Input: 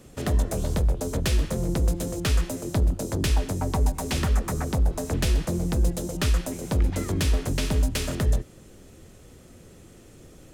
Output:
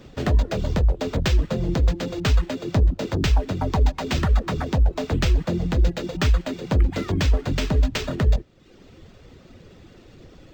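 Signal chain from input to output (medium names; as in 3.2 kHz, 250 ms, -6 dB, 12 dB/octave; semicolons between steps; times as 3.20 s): reverb removal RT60 0.84 s; decimation joined by straight lines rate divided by 4×; trim +4.5 dB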